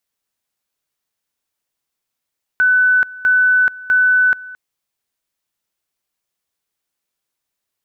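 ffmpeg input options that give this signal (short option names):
-f lavfi -i "aevalsrc='pow(10,(-9.5-20.5*gte(mod(t,0.65),0.43))/20)*sin(2*PI*1500*t)':d=1.95:s=44100"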